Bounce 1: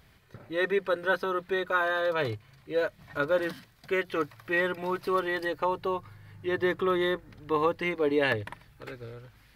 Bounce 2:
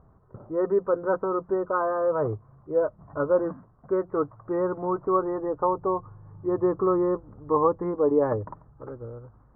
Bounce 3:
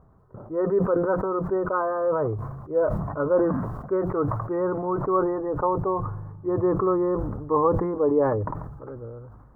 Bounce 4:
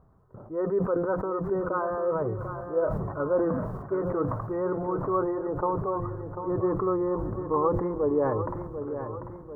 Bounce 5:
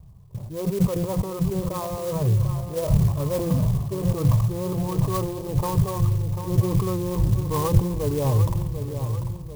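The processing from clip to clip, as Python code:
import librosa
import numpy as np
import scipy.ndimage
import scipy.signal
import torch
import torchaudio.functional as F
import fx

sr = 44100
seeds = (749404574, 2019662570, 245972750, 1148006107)

y1 = scipy.signal.sosfilt(scipy.signal.ellip(4, 1.0, 60, 1200.0, 'lowpass', fs=sr, output='sos'), x)
y1 = y1 * 10.0 ** (4.5 / 20.0)
y2 = fx.sustainer(y1, sr, db_per_s=40.0)
y3 = fx.echo_feedback(y2, sr, ms=743, feedback_pct=51, wet_db=-9.5)
y3 = y3 * 10.0 ** (-4.0 / 20.0)
y4 = scipy.signal.sosfilt(scipy.signal.butter(16, 1200.0, 'lowpass', fs=sr, output='sos'), y3)
y4 = fx.low_shelf_res(y4, sr, hz=200.0, db=13.0, q=1.5)
y4 = fx.clock_jitter(y4, sr, seeds[0], jitter_ms=0.066)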